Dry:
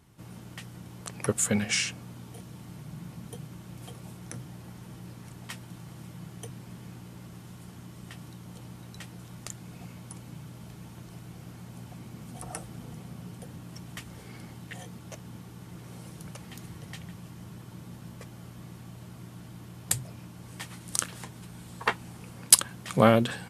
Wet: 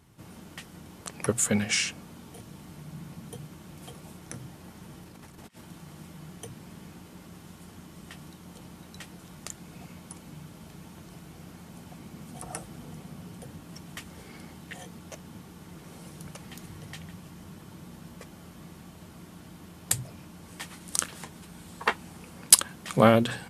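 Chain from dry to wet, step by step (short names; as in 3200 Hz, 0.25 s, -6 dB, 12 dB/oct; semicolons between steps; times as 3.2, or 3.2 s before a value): notches 60/120/180 Hz; 5.03–5.61 negative-ratio compressor -50 dBFS, ratio -0.5; gain +1 dB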